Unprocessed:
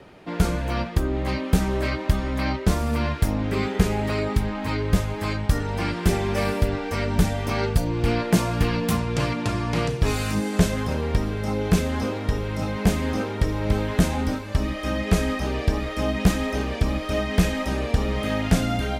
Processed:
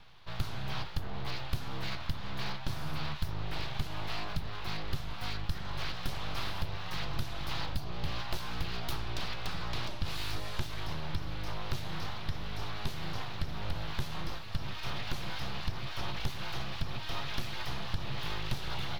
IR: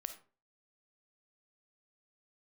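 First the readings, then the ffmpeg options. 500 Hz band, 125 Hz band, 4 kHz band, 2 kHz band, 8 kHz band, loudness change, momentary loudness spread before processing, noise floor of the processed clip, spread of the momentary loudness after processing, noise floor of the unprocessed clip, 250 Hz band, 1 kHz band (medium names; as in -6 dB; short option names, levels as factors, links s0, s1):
-20.0 dB, -14.5 dB, -5.0 dB, -10.5 dB, -15.0 dB, -14.0 dB, 4 LU, -37 dBFS, 2 LU, -32 dBFS, -20.5 dB, -11.0 dB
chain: -af "aeval=exprs='abs(val(0))':c=same,acompressor=threshold=0.0891:ratio=6,equalizer=f=125:t=o:w=1:g=5,equalizer=f=250:t=o:w=1:g=-11,equalizer=f=500:t=o:w=1:g=-9,equalizer=f=2000:t=o:w=1:g=-4,equalizer=f=4000:t=o:w=1:g=8,equalizer=f=8000:t=o:w=1:g=-11,volume=0.562"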